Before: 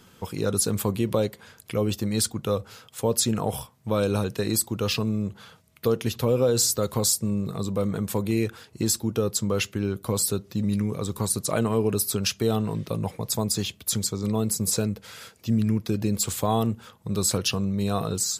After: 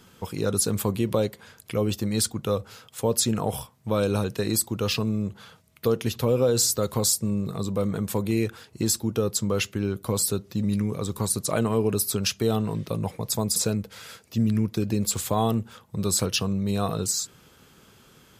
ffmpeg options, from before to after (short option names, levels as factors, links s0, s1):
-filter_complex "[0:a]asplit=2[s0][s1];[s0]atrim=end=13.562[s2];[s1]atrim=start=14.678[s3];[s2][s3]acrossfade=d=0.004:c1=hsin:c2=hsin"